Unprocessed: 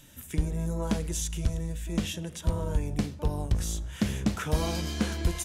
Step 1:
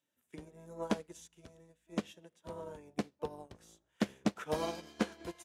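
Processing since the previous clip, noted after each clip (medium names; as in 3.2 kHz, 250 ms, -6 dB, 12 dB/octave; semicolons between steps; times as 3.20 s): high-pass 440 Hz 12 dB/octave; tilt EQ -2.5 dB/octave; upward expansion 2.5:1, over -48 dBFS; trim +3 dB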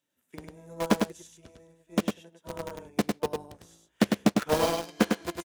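in parallel at 0 dB: bit crusher 6-bit; on the sum: delay 102 ms -4 dB; trim +3 dB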